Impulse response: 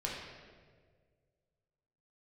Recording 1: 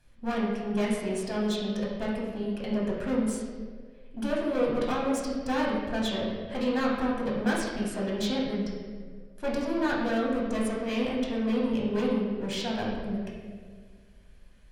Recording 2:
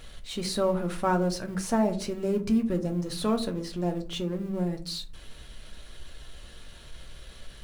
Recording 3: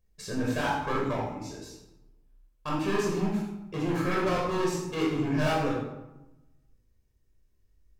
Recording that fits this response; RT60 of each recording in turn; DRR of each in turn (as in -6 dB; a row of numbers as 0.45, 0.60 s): 1; 1.8, 0.45, 1.0 s; -4.5, 4.5, -4.0 dB